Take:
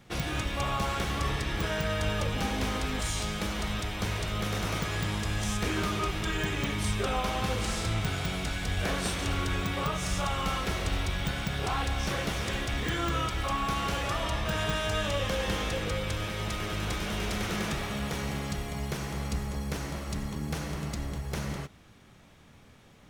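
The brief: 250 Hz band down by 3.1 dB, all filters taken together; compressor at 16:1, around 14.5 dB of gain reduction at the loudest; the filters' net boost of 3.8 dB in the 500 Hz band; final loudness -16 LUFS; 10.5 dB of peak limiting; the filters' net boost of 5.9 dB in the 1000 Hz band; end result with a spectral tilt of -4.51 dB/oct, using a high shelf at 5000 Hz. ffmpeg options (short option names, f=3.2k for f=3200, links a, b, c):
-af "equalizer=f=250:t=o:g=-6,equalizer=f=500:t=o:g=4,equalizer=f=1k:t=o:g=7,highshelf=f=5k:g=-4,acompressor=threshold=-37dB:ratio=16,volume=29.5dB,alimiter=limit=-7dB:level=0:latency=1"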